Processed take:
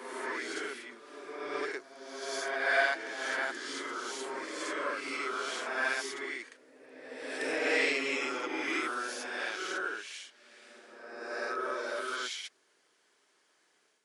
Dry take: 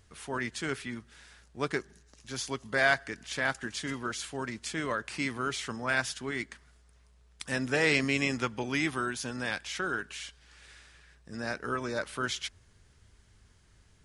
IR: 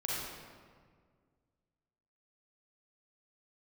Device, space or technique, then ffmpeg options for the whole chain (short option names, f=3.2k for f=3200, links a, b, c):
ghost voice: -filter_complex "[0:a]areverse[a];[1:a]atrim=start_sample=2205[b];[a][b]afir=irnorm=-1:irlink=0,areverse,highpass=f=340:w=0.5412,highpass=f=340:w=1.3066,volume=-5.5dB"